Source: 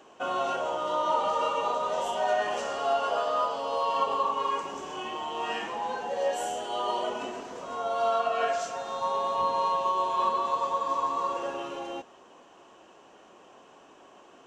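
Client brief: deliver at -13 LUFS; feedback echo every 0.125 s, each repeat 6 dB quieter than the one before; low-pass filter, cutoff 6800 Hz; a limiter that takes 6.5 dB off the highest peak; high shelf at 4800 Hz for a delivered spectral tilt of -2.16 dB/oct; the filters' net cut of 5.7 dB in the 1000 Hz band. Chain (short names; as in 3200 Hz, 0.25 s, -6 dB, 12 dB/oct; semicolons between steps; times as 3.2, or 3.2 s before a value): LPF 6800 Hz; bell 1000 Hz -7.5 dB; high shelf 4800 Hz +7.5 dB; limiter -24 dBFS; feedback echo 0.125 s, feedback 50%, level -6 dB; gain +19.5 dB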